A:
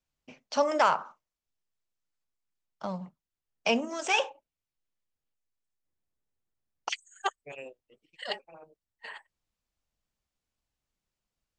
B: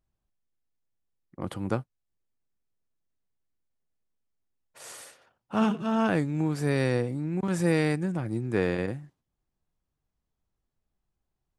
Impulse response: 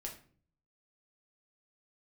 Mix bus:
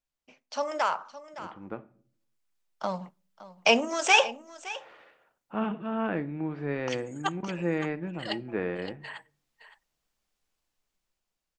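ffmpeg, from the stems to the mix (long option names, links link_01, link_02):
-filter_complex "[0:a]highpass=frequency=390:poles=1,volume=-4.5dB,asplit=3[link_01][link_02][link_03];[link_02]volume=-21dB[link_04];[link_03]volume=-17dB[link_05];[1:a]lowpass=frequency=2800:width=0.5412,lowpass=frequency=2800:width=1.3066,equalizer=frequency=110:width_type=o:width=0.75:gain=-13,volume=-17.5dB,asplit=3[link_06][link_07][link_08];[link_07]volume=-5dB[link_09];[link_08]apad=whole_len=510933[link_10];[link_01][link_10]sidechaincompress=threshold=-51dB:ratio=8:attack=16:release=657[link_11];[2:a]atrim=start_sample=2205[link_12];[link_04][link_09]amix=inputs=2:normalize=0[link_13];[link_13][link_12]afir=irnorm=-1:irlink=0[link_14];[link_05]aecho=0:1:565:1[link_15];[link_11][link_06][link_14][link_15]amix=inputs=4:normalize=0,dynaudnorm=framelen=520:gausssize=7:maxgain=11dB"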